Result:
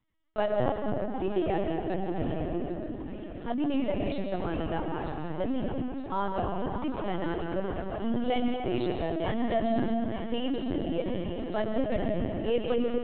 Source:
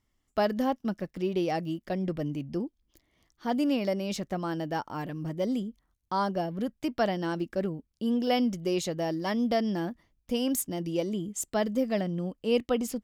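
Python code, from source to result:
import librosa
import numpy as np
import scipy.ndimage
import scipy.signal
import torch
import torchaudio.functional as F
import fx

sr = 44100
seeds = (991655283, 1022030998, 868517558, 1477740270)

y = fx.reverse_delay_fb(x, sr, ms=463, feedback_pct=77, wet_db=-10.5)
y = fx.peak_eq(y, sr, hz=730.0, db=-11.5, octaves=0.49, at=(2.65, 3.5))
y = fx.over_compress(y, sr, threshold_db=-28.0, ratio=-0.5, at=(6.73, 7.24), fade=0.02)
y = fx.highpass(y, sr, hz=180.0, slope=6, at=(8.41, 8.9))
y = fx.rev_freeverb(y, sr, rt60_s=2.7, hf_ratio=0.4, predelay_ms=80, drr_db=2.0)
y = fx.lpc_vocoder(y, sr, seeds[0], excitation='pitch_kept', order=16)
y = F.gain(torch.from_numpy(y), -2.5).numpy()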